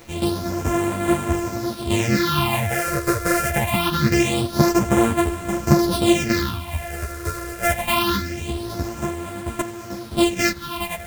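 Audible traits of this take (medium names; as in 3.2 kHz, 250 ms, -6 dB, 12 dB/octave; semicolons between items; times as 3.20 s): a buzz of ramps at a fixed pitch in blocks of 128 samples; phasing stages 6, 0.24 Hz, lowest notch 220–4900 Hz; a quantiser's noise floor 8-bit, dither none; a shimmering, thickened sound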